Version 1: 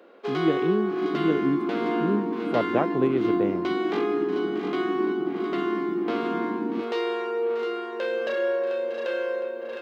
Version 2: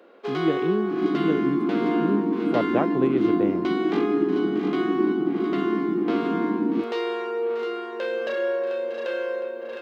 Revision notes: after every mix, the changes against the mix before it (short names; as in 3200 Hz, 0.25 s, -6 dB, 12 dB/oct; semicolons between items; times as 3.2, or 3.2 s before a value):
second sound +6.5 dB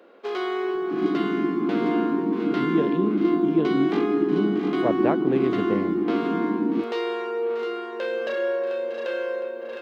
speech: entry +2.30 s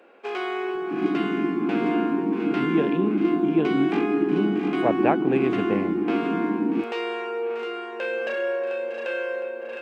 first sound: send off; master: add thirty-one-band EQ 800 Hz +7 dB, 1600 Hz +5 dB, 2500 Hz +11 dB, 4000 Hz -4 dB, 8000 Hz +7 dB